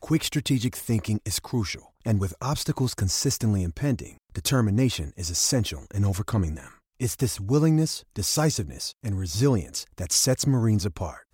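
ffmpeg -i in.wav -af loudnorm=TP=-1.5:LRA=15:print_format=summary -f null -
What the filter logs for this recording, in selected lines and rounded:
Input Integrated:    -25.5 LUFS
Input True Peak:      -9.8 dBTP
Input LRA:             1.4 LU
Input Threshold:     -35.6 LUFS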